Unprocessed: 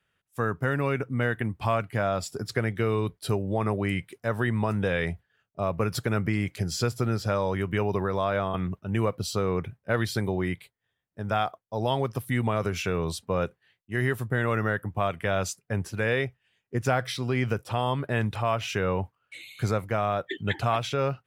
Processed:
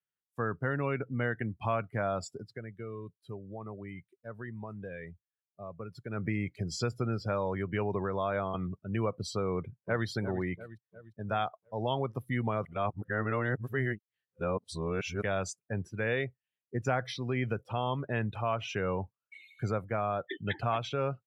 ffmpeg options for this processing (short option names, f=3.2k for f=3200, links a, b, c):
-filter_complex "[0:a]asplit=2[a][b];[b]afade=t=in:st=9.52:d=0.01,afade=t=out:st=10.07:d=0.01,aecho=0:1:350|700|1050|1400|1750|2100|2450:0.281838|0.169103|0.101462|0.0608771|0.0365262|0.0219157|0.0131494[c];[a][c]amix=inputs=2:normalize=0,asplit=5[d][e][f][g][h];[d]atrim=end=2.58,asetpts=PTS-STARTPTS,afade=t=out:st=2.3:d=0.28:c=qua:silence=0.316228[i];[e]atrim=start=2.58:end=5.97,asetpts=PTS-STARTPTS,volume=-10dB[j];[f]atrim=start=5.97:end=12.652,asetpts=PTS-STARTPTS,afade=t=in:d=0.28:c=qua:silence=0.316228[k];[g]atrim=start=12.648:end=15.222,asetpts=PTS-STARTPTS,areverse[l];[h]atrim=start=15.218[m];[i][j][k]concat=n=3:v=0:a=1[n];[n][l]acrossfade=d=0.004:c1=hsin:c2=hsin[o];[o][m]acrossfade=d=0.004:c1=hsin:c2=hsin,afftdn=nr=19:nf=-38,highpass=81,volume=-5dB"